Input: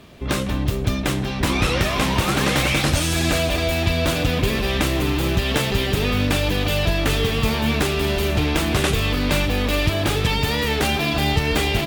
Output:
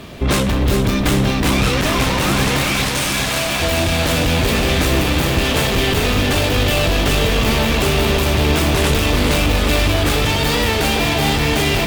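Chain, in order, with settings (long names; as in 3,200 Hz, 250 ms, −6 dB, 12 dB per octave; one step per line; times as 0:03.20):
hard clipping −22.5 dBFS, distortion −7 dB
speech leveller
0:02.64–0:03.62: inverse Chebyshev high-pass filter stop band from 320 Hz, stop band 40 dB
feedback echo at a low word length 402 ms, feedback 80%, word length 8 bits, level −6.5 dB
level +7 dB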